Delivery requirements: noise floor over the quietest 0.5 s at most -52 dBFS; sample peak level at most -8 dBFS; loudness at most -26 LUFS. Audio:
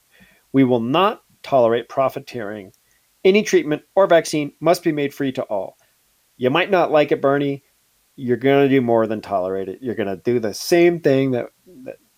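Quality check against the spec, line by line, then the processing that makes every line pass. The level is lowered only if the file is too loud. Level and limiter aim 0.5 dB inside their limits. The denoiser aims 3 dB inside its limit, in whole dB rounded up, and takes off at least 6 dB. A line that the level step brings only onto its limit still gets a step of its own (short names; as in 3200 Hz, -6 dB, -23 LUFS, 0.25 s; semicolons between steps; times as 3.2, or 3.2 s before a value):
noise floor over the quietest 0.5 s -62 dBFS: OK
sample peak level -4.0 dBFS: fail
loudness -18.5 LUFS: fail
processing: gain -8 dB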